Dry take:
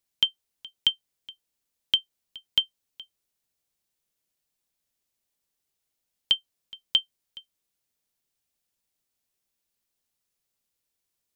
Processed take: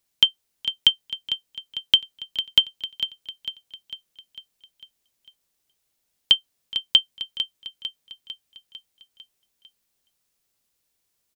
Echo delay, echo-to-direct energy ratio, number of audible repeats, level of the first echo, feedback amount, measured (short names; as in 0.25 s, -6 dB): 0.45 s, -9.0 dB, 5, -10.5 dB, 55%